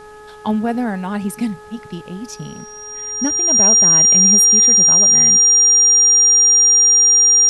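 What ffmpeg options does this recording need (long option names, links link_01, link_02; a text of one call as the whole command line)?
ffmpeg -i in.wav -af "bandreject=frequency=422.9:width_type=h:width=4,bandreject=frequency=845.8:width_type=h:width=4,bandreject=frequency=1268.7:width_type=h:width=4,bandreject=frequency=1691.6:width_type=h:width=4,bandreject=frequency=5700:width=30,agate=range=-21dB:threshold=-29dB" out.wav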